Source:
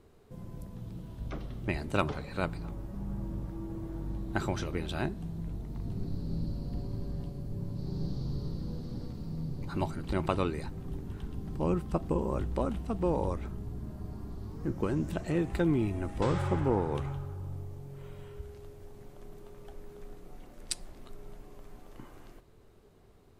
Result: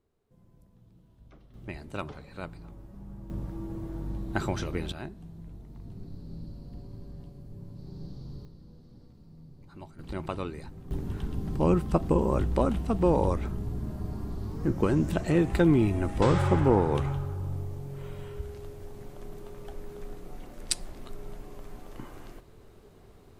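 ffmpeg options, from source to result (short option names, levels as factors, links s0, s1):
-af "asetnsamples=n=441:p=0,asendcmd='1.54 volume volume -7dB;3.3 volume volume 2dB;4.92 volume volume -7dB;8.45 volume volume -14dB;9.99 volume volume -4.5dB;10.91 volume volume 6dB',volume=0.158"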